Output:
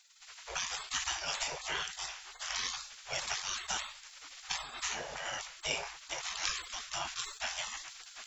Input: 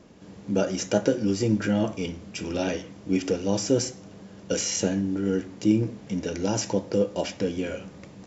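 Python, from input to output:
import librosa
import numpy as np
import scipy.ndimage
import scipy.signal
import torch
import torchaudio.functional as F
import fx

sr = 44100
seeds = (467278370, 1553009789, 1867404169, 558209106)

y = fx.recorder_agc(x, sr, target_db=-13.5, rise_db_per_s=5.6, max_gain_db=30)
y = fx.spec_gate(y, sr, threshold_db=-30, keep='weak')
y = fx.sustainer(y, sr, db_per_s=90.0)
y = F.gain(torch.from_numpy(y), 9.0).numpy()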